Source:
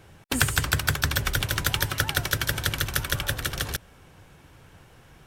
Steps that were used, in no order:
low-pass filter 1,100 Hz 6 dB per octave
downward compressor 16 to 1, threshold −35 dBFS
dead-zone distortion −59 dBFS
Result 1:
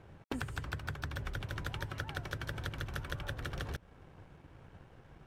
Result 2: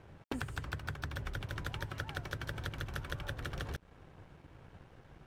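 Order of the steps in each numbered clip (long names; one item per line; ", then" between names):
dead-zone distortion, then low-pass filter, then downward compressor
low-pass filter, then downward compressor, then dead-zone distortion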